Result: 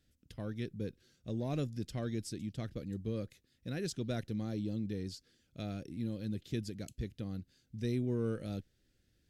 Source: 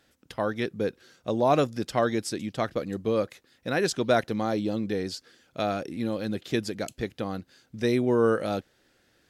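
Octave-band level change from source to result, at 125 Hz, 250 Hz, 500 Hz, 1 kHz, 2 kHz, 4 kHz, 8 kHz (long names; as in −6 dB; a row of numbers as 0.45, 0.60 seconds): −3.0, −9.0, −16.0, −22.5, −18.0, −12.5, −11.0 decibels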